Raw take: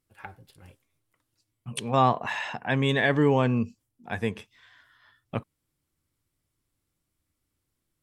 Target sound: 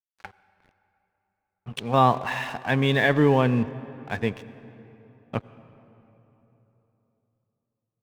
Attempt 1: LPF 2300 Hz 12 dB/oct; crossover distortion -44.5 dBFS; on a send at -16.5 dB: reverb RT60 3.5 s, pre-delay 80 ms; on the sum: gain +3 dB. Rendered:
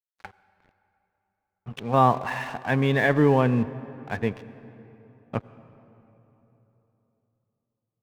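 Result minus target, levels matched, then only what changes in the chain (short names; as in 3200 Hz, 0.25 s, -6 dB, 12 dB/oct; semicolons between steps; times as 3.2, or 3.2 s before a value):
4000 Hz band -6.0 dB
change: LPF 4900 Hz 12 dB/oct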